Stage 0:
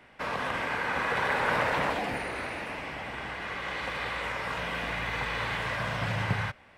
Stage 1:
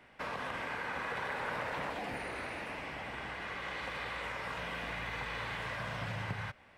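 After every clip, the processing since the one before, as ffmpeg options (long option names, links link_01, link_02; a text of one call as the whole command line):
ffmpeg -i in.wav -af "acompressor=threshold=-33dB:ratio=2.5,volume=-4dB" out.wav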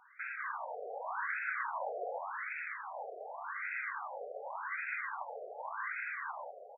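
ffmpeg -i in.wav -af "flanger=delay=3.8:depth=8.6:regen=-63:speed=1.1:shape=triangular,aecho=1:1:469:0.501,afftfilt=real='re*between(b*sr/1024,540*pow(1900/540,0.5+0.5*sin(2*PI*0.87*pts/sr))/1.41,540*pow(1900/540,0.5+0.5*sin(2*PI*0.87*pts/sr))*1.41)':imag='im*between(b*sr/1024,540*pow(1900/540,0.5+0.5*sin(2*PI*0.87*pts/sr))/1.41,540*pow(1900/540,0.5+0.5*sin(2*PI*0.87*pts/sr))*1.41)':win_size=1024:overlap=0.75,volume=7.5dB" out.wav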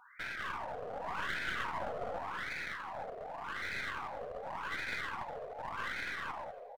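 ffmpeg -i in.wav -af "aeval=exprs='clip(val(0),-1,0.00531)':channel_layout=same,flanger=delay=4.1:depth=6.4:regen=-76:speed=0.91:shape=sinusoidal,aecho=1:1:286|572:0.0708|0.0191,volume=7dB" out.wav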